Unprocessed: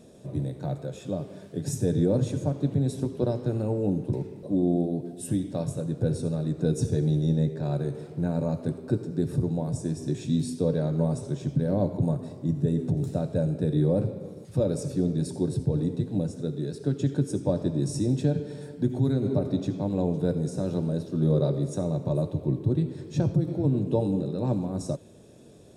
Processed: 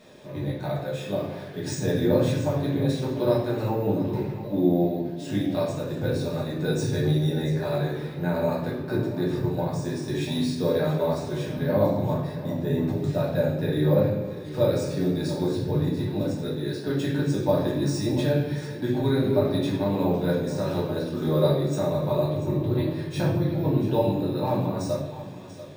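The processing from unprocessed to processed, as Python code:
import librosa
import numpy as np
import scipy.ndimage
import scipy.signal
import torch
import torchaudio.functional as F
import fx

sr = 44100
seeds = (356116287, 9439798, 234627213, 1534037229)

p1 = fx.low_shelf(x, sr, hz=330.0, db=-10.0)
p2 = np.repeat(scipy.signal.resample_poly(p1, 1, 3), 3)[:len(p1)]
p3 = fx.graphic_eq(p2, sr, hz=(125, 1000, 2000, 4000), db=(4, 6, 9, 6))
p4 = p3 + fx.echo_single(p3, sr, ms=687, db=-14.0, dry=0)
p5 = fx.room_shoebox(p4, sr, seeds[0], volume_m3=100.0, walls='mixed', distance_m=1.4)
y = p5 * 10.0 ** (-2.0 / 20.0)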